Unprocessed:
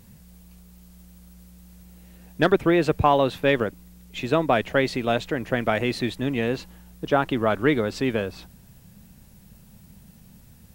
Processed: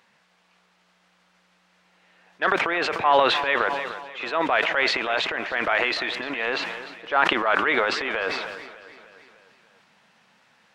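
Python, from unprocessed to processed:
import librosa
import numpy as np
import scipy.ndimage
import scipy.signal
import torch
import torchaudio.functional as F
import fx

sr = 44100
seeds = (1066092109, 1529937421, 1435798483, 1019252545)

p1 = scipy.signal.sosfilt(scipy.signal.butter(2, 1200.0, 'highpass', fs=sr, output='sos'), x)
p2 = fx.high_shelf(p1, sr, hz=5800.0, db=-8.5)
p3 = fx.transient(p2, sr, attack_db=-5, sustain_db=10)
p4 = fx.rider(p3, sr, range_db=10, speed_s=2.0)
p5 = p3 + (p4 * 10.0 ** (0.0 / 20.0))
p6 = fx.spacing_loss(p5, sr, db_at_10k=27)
p7 = p6 + fx.echo_feedback(p6, sr, ms=300, feedback_pct=57, wet_db=-16, dry=0)
p8 = fx.sustainer(p7, sr, db_per_s=40.0)
y = p8 * 10.0 ** (5.5 / 20.0)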